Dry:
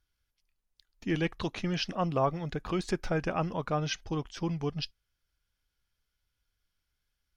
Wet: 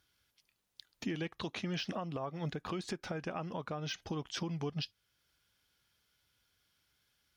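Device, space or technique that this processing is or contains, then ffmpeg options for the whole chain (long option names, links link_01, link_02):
broadcast voice chain: -af "highpass=110,deesser=0.95,acompressor=threshold=-38dB:ratio=5,equalizer=frequency=3500:width_type=o:width=0.56:gain=3,alimiter=level_in=11.5dB:limit=-24dB:level=0:latency=1:release=433,volume=-11.5dB,volume=8dB"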